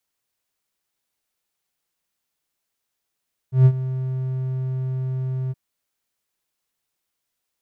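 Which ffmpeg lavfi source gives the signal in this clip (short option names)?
-f lavfi -i "aevalsrc='0.531*(1-4*abs(mod(130*t+0.25,1)-0.5))':d=2.021:s=44100,afade=t=in:d=0.136,afade=t=out:st=0.136:d=0.062:silence=0.178,afade=t=out:st=1.99:d=0.031"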